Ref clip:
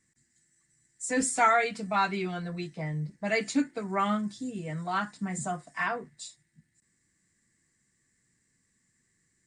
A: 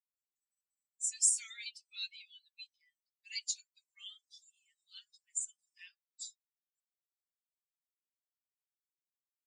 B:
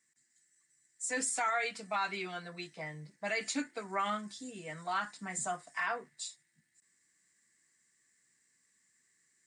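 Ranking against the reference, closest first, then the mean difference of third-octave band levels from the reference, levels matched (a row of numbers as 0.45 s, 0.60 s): B, A; 5.0 dB, 17.5 dB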